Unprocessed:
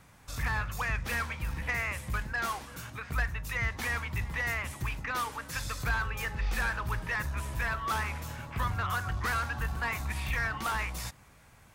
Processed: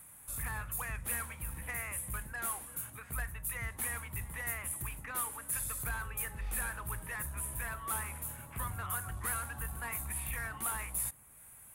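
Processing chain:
high shelf with overshoot 7,500 Hz +14 dB, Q 3
one half of a high-frequency compander encoder only
level −8 dB

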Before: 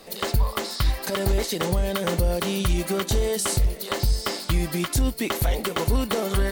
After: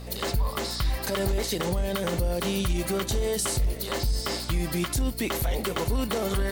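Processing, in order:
mains hum 60 Hz, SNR 16 dB
brickwall limiter −18 dBFS, peak gain reduction 6 dB

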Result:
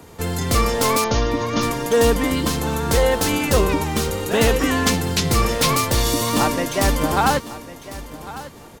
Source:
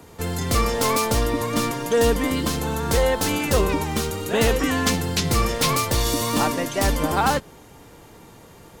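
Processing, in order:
0:01.04–0:01.63: Chebyshev low-pass filter 6,700 Hz, order 10
on a send: repeating echo 1,101 ms, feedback 22%, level −16 dB
on the sum: level +2.5 dB

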